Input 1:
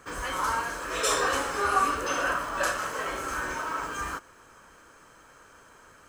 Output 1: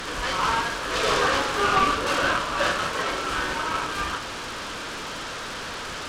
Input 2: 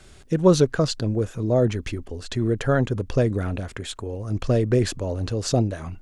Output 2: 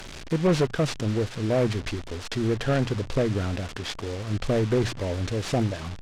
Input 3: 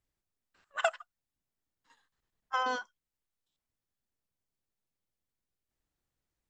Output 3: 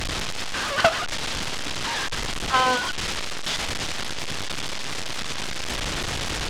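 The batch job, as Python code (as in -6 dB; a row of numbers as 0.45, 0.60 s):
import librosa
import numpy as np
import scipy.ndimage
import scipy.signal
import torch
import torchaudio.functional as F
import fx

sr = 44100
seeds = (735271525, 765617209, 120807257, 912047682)

p1 = fx.delta_mod(x, sr, bps=32000, step_db=-32.5)
p2 = fx.peak_eq(p1, sr, hz=3400.0, db=5.0, octaves=0.67)
p3 = fx.hum_notches(p2, sr, base_hz=60, count=2)
p4 = fx.fold_sine(p3, sr, drive_db=8, ceiling_db=-5.0)
p5 = p3 + (p4 * librosa.db_to_amplitude(-6.0))
p6 = fx.noise_mod_delay(p5, sr, seeds[0], noise_hz=1300.0, depth_ms=0.044)
y = p6 * 10.0 ** (-26 / 20.0) / np.sqrt(np.mean(np.square(p6)))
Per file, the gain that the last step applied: -5.0, -10.5, +1.5 dB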